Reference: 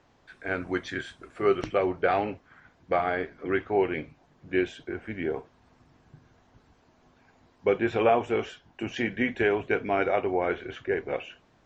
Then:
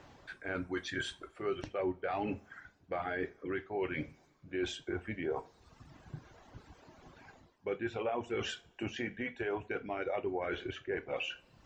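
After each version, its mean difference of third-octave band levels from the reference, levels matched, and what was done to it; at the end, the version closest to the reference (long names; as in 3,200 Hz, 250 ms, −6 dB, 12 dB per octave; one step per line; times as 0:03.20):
3.5 dB: reverb reduction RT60 0.9 s
reversed playback
downward compressor 5 to 1, threshold −40 dBFS, peak gain reduction 20 dB
reversed playback
brickwall limiter −32.5 dBFS, peak gain reduction 5.5 dB
coupled-rooms reverb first 0.3 s, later 2.2 s, from −27 dB, DRR 11 dB
level +6.5 dB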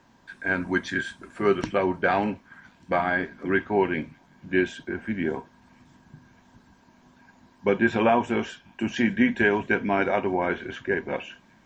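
2.0 dB: high-shelf EQ 4,700 Hz +9 dB
notch filter 450 Hz, Q 12
hollow resonant body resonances 210/950/1,600 Hz, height 11 dB, ringing for 35 ms
on a send: delay with a high-pass on its return 596 ms, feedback 66%, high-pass 4,600 Hz, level −19.5 dB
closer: second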